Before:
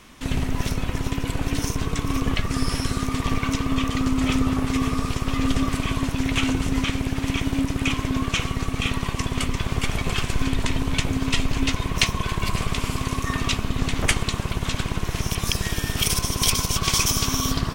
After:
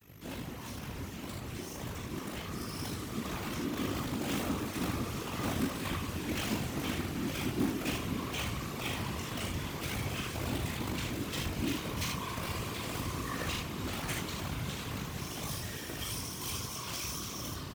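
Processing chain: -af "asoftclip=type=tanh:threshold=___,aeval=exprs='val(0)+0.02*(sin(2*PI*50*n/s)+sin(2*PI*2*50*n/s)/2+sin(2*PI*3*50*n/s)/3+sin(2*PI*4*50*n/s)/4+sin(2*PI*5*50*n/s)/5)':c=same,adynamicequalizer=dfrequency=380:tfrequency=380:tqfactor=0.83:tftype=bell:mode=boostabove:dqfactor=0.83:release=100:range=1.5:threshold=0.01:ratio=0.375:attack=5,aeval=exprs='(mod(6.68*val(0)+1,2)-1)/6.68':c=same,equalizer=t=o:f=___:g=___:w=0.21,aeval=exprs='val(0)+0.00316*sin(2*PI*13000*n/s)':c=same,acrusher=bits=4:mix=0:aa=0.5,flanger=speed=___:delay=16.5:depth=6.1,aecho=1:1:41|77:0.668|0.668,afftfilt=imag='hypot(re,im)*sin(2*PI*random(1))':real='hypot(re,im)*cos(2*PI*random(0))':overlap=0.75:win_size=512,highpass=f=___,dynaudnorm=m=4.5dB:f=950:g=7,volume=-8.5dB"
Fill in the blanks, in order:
-18dB, 13k, 4.5, 1.5, 67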